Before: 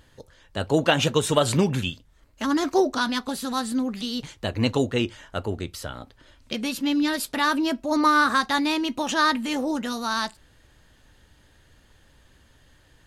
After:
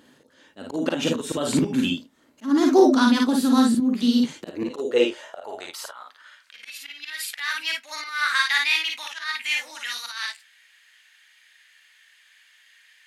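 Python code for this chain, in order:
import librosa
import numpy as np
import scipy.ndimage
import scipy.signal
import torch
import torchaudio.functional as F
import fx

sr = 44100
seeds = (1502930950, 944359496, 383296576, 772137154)

y = fx.filter_sweep_highpass(x, sr, from_hz=250.0, to_hz=2100.0, start_s=4.29, end_s=6.77, q=3.2)
y = fx.auto_swell(y, sr, attack_ms=256.0)
y = fx.echo_multitap(y, sr, ms=(42, 54, 76), db=(-6.0, -3.0, -16.0))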